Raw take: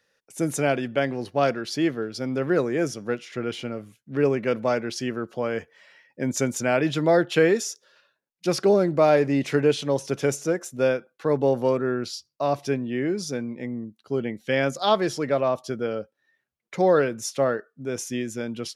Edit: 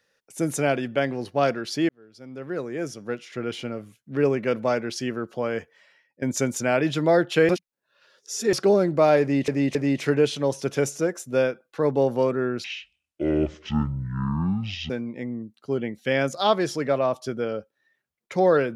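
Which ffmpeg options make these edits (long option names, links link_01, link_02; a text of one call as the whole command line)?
ffmpeg -i in.wav -filter_complex "[0:a]asplit=9[link_01][link_02][link_03][link_04][link_05][link_06][link_07][link_08][link_09];[link_01]atrim=end=1.89,asetpts=PTS-STARTPTS,afade=type=out:start_time=1.886:duration=0.004:curve=hsin[link_10];[link_02]atrim=start=1.89:end=6.22,asetpts=PTS-STARTPTS,afade=type=in:duration=1.71,afade=type=out:start_time=3.67:duration=0.66:silence=0.149624[link_11];[link_03]atrim=start=6.22:end=7.492,asetpts=PTS-STARTPTS,afade=type=in:duration=0.004:curve=hsin:silence=0.149624[link_12];[link_04]atrim=start=7.488:end=8.532,asetpts=PTS-STARTPTS,areverse[link_13];[link_05]atrim=start=8.528:end=9.482[link_14];[link_06]atrim=start=9.208:end=9.482[link_15];[link_07]atrim=start=9.208:end=12.104[link_16];[link_08]atrim=start=12.1:end=13.32,asetpts=PTS-STARTPTS,asetrate=23814,aresample=44100,atrim=end_sample=99633,asetpts=PTS-STARTPTS[link_17];[link_09]atrim=start=13.316[link_18];[link_10][link_11][link_12]concat=n=3:v=0:a=1[link_19];[link_19][link_13]acrossfade=duration=0.004:curve1=hsin:curve2=hsin[link_20];[link_20][link_14]acrossfade=duration=0.004:curve1=hsin:curve2=hsin[link_21];[link_21][link_15]acrossfade=duration=0.004:curve1=hsin:curve2=hsin[link_22];[link_22][link_16]acrossfade=duration=0.004:curve1=hsin:curve2=hsin[link_23];[link_23][link_17]acrossfade=duration=0.004:curve1=hsin:curve2=hsin[link_24];[link_24][link_18]acrossfade=duration=0.004:curve1=hsin:curve2=hsin" out.wav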